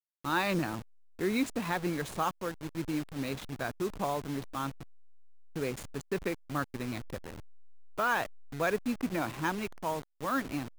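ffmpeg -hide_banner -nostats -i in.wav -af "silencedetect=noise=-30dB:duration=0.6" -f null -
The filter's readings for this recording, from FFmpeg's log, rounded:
silence_start: 4.68
silence_end: 5.56 | silence_duration: 0.88
silence_start: 7.16
silence_end: 7.99 | silence_duration: 0.83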